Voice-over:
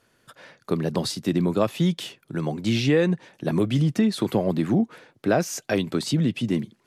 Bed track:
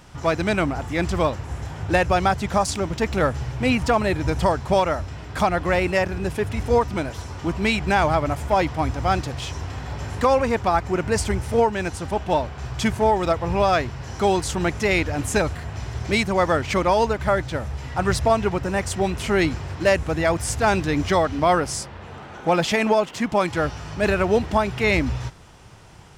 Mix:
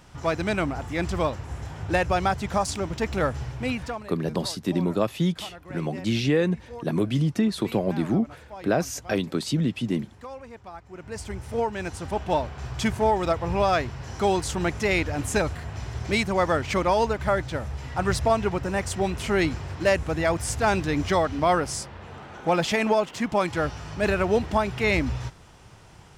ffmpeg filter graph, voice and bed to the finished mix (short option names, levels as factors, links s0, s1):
-filter_complex "[0:a]adelay=3400,volume=0.794[s0];[1:a]volume=5.31,afade=t=out:st=3.43:d=0.65:silence=0.133352,afade=t=in:st=10.88:d=1.36:silence=0.11885[s1];[s0][s1]amix=inputs=2:normalize=0"